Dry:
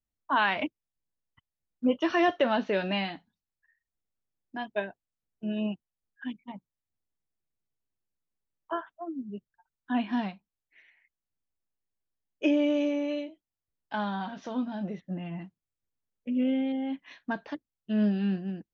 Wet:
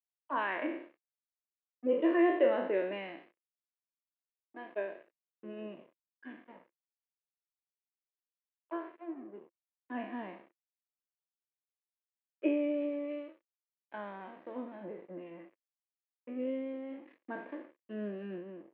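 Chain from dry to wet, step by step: spectral sustain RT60 0.79 s; crossover distortion -42.5 dBFS; cabinet simulation 340–2200 Hz, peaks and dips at 340 Hz +10 dB, 520 Hz +6 dB, 800 Hz -7 dB, 1.4 kHz -8 dB; trim -6.5 dB

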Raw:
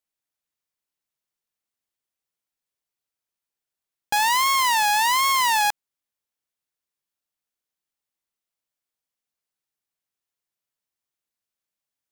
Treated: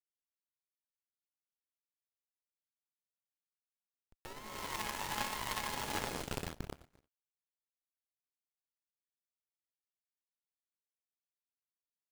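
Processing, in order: amplifier tone stack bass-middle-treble 10-0-10; hard clipper -17.5 dBFS, distortion -10 dB; whistle 1.3 kHz -44 dBFS; on a send: two-band feedback delay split 2 kHz, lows 125 ms, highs 513 ms, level -5 dB; on the sum: Schmitt trigger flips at -29 dBFS; gated-style reverb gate 370 ms rising, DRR 3 dB; power-law waveshaper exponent 3; trim +7.5 dB

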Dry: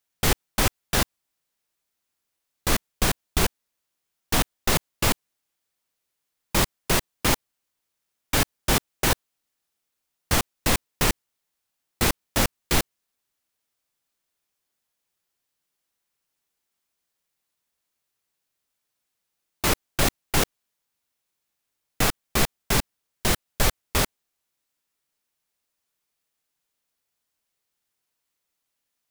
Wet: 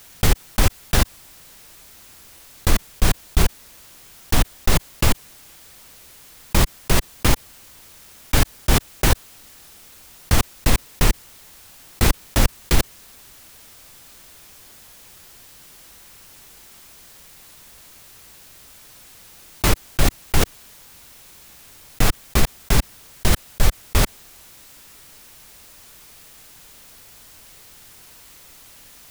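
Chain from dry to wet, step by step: bass shelf 120 Hz +11.5 dB; level flattener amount 50%; trim -2.5 dB

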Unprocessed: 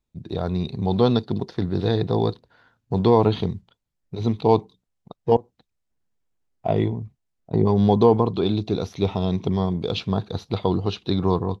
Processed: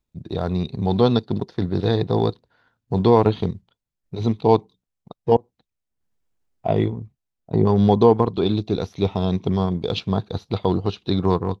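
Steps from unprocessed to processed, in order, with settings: transient shaper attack -1 dB, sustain -7 dB; trim +2 dB

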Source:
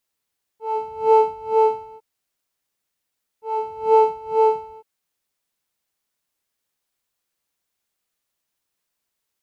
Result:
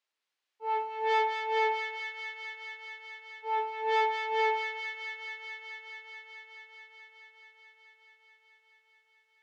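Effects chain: dynamic bell 1.6 kHz, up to +7 dB, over -35 dBFS, Q 1.3; saturation -19.5 dBFS, distortion -6 dB; band-pass 300–3200 Hz; tilt EQ +2.5 dB/octave; feedback echo behind a high-pass 215 ms, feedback 84%, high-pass 1.5 kHz, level -4 dB; trim -3.5 dB

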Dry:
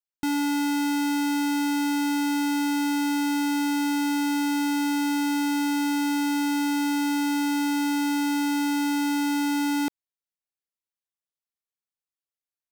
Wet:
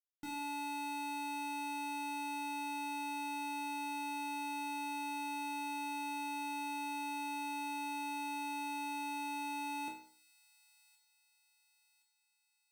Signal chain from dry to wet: chord resonator G#2 minor, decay 0.52 s; feedback echo behind a high-pass 1068 ms, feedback 51%, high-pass 4 kHz, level -15 dB; trim +1.5 dB

